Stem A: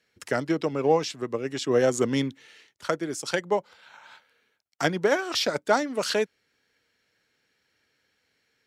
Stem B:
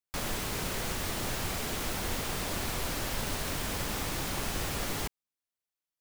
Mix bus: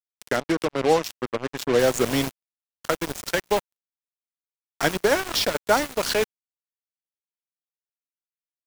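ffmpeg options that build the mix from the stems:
-filter_complex "[0:a]highpass=f=46:w=0.5412,highpass=f=46:w=1.3066,volume=1.33,asplit=2[s0][s1];[1:a]asoftclip=type=hard:threshold=0.0355,adelay=1650,volume=0.944[s2];[s1]apad=whole_len=337588[s3];[s2][s3]sidechaingate=range=0.0224:threshold=0.00631:ratio=16:detection=peak[s4];[s0][s4]amix=inputs=2:normalize=0,lowshelf=f=270:g=-3,acrusher=bits=3:mix=0:aa=0.5"

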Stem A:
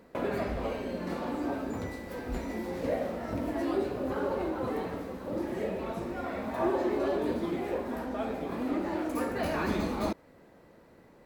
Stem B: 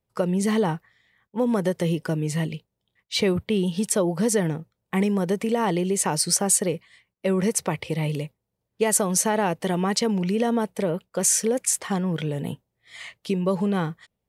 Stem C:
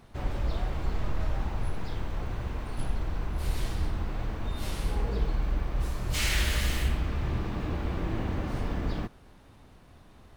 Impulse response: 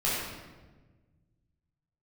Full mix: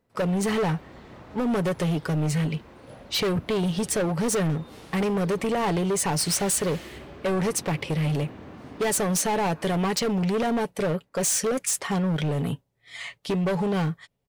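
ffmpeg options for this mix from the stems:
-filter_complex "[0:a]volume=0.133[s0];[1:a]aecho=1:1:7.1:0.38,volume=1.33[s1];[2:a]highpass=130,adelay=100,volume=0.376[s2];[s0][s1][s2]amix=inputs=3:normalize=0,highshelf=f=9000:g=-5,asoftclip=type=hard:threshold=0.0841"

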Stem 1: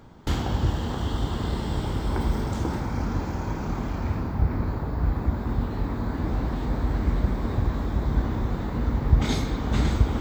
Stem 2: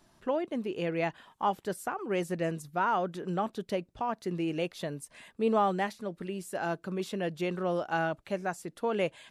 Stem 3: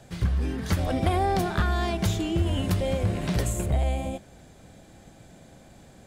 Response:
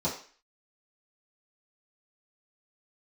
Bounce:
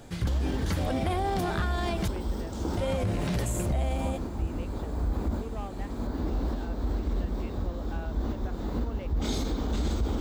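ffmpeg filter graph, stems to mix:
-filter_complex "[0:a]equalizer=f=125:t=o:w=1:g=-12,equalizer=f=1000:t=o:w=1:g=-5,equalizer=f=2000:t=o:w=1:g=-9,volume=1.26[s0];[1:a]lowpass=5000,asoftclip=type=hard:threshold=0.075,volume=0.211,asplit=2[s1][s2];[2:a]volume=1.06,asplit=3[s3][s4][s5];[s3]atrim=end=2.08,asetpts=PTS-STARTPTS,afade=t=out:st=2.076:d=0.004:c=hsin[s6];[s4]atrim=start=2.08:end=2.77,asetpts=PTS-STARTPTS,volume=0[s7];[s5]atrim=start=2.77,asetpts=PTS-STARTPTS,afade=t=in:d=0.004:c=hsin[s8];[s6][s7][s8]concat=n=3:v=0:a=1[s9];[s2]apad=whole_len=450179[s10];[s0][s10]sidechaincompress=threshold=0.00447:ratio=8:attack=26:release=406[s11];[s11][s1][s9]amix=inputs=3:normalize=0,alimiter=limit=0.0944:level=0:latency=1:release=35"

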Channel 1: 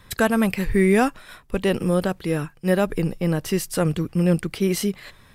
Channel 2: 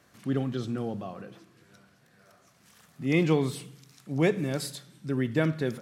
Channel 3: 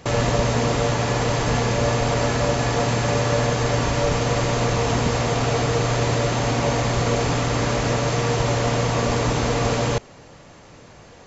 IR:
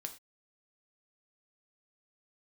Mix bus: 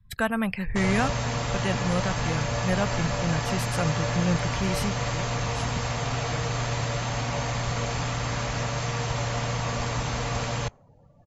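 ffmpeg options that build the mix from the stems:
-filter_complex "[0:a]highshelf=f=4400:g=-6.5,volume=0.794,asplit=2[s0][s1];[1:a]adelay=950,volume=0.376[s2];[2:a]adelay=700,volume=0.596[s3];[s1]apad=whole_len=298394[s4];[s2][s4]sidechaincompress=threshold=0.0631:ratio=8:attack=16:release=1340[s5];[s0][s5][s3]amix=inputs=3:normalize=0,afftdn=nr=27:nf=-45,equalizer=f=360:t=o:w=1.3:g=-11,acrossover=split=120[s6][s7];[s6]acompressor=threshold=0.0398:ratio=3[s8];[s8][s7]amix=inputs=2:normalize=0"

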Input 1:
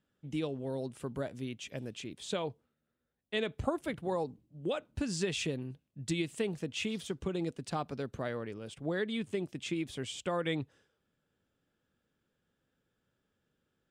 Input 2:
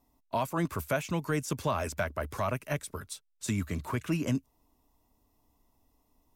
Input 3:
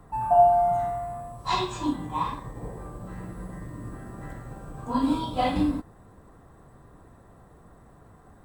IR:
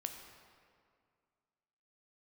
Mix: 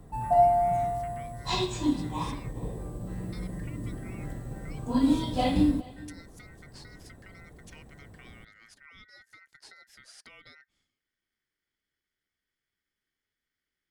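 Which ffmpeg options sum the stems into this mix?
-filter_complex "[0:a]acompressor=threshold=0.00794:ratio=6,aeval=exprs='val(0)*sin(2*PI*1700*n/s)':c=same,volume=1[s0];[2:a]volume=1.33,asplit=2[s1][s2];[s2]volume=0.0841,aecho=0:1:417:1[s3];[s0][s1][s3]amix=inputs=3:normalize=0,equalizer=f=1200:t=o:w=1.4:g=-12"

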